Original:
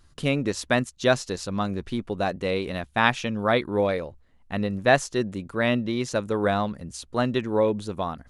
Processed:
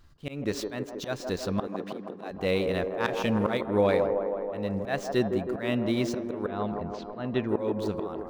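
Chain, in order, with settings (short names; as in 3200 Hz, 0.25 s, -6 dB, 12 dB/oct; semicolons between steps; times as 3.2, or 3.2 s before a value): median filter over 5 samples; auto swell 0.286 s; 1.67–2.31 HPF 180 Hz 24 dB/oct; 6.46–7.49 air absorption 190 m; band-limited delay 0.16 s, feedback 72%, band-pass 560 Hz, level -3.5 dB; 3–3.57 sample leveller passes 1; de-hum 404.6 Hz, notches 15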